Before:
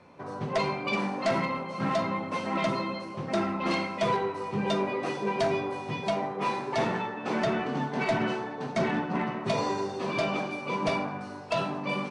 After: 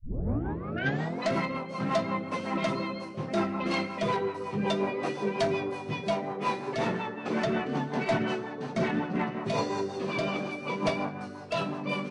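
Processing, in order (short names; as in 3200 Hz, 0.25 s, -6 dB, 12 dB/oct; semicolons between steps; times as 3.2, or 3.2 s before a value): tape start at the beginning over 1.29 s; rotary speaker horn 5.5 Hz; gain +1.5 dB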